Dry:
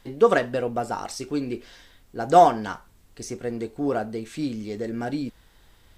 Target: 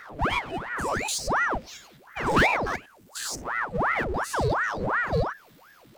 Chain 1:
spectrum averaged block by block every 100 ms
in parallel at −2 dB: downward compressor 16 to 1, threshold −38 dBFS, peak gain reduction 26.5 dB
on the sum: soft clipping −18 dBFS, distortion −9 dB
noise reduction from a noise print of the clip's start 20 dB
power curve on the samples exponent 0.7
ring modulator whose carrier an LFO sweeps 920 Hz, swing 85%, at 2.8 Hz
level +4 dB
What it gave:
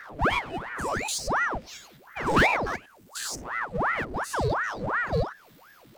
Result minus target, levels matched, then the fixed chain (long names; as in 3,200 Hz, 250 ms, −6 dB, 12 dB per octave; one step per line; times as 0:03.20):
downward compressor: peak gain reduction +7.5 dB
spectrum averaged block by block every 100 ms
in parallel at −2 dB: downward compressor 16 to 1, threshold −30 dBFS, peak gain reduction 19 dB
on the sum: soft clipping −18 dBFS, distortion −9 dB
noise reduction from a noise print of the clip's start 20 dB
power curve on the samples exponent 0.7
ring modulator whose carrier an LFO sweeps 920 Hz, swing 85%, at 2.8 Hz
level +4 dB